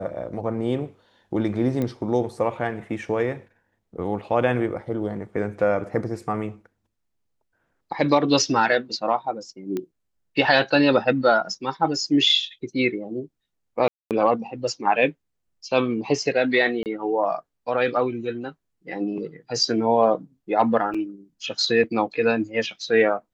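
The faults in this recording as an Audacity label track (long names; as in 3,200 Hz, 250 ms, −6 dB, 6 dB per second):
1.820000	1.820000	click −15 dBFS
9.770000	9.770000	click −16 dBFS
13.880000	14.110000	drop-out 228 ms
16.830000	16.860000	drop-out 28 ms
20.940000	20.950000	drop-out 5.1 ms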